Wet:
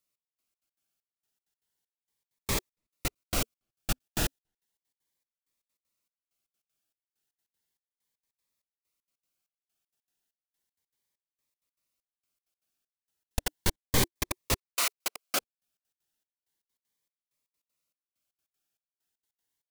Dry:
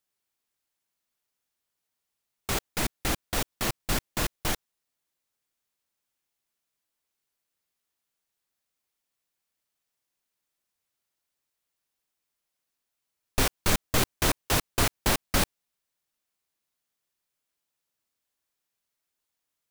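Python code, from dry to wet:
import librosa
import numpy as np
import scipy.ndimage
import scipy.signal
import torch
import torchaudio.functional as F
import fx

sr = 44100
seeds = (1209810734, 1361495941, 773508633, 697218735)

y = fx.highpass(x, sr, hz=fx.line((14.55, 1300.0), (15.39, 450.0)), slope=12, at=(14.55, 15.39), fade=0.02)
y = fx.step_gate(y, sr, bpm=195, pattern='xx...xx.x.x', floor_db=-60.0, edge_ms=4.5)
y = fx.notch_cascade(y, sr, direction='rising', hz=0.34)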